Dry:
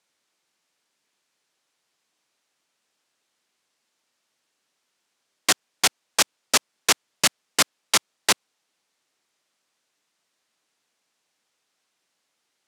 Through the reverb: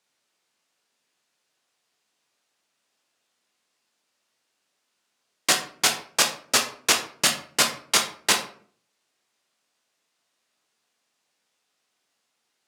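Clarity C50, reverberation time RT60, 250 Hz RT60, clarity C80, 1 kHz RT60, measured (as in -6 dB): 9.0 dB, 0.50 s, 0.65 s, 13.5 dB, 0.45 s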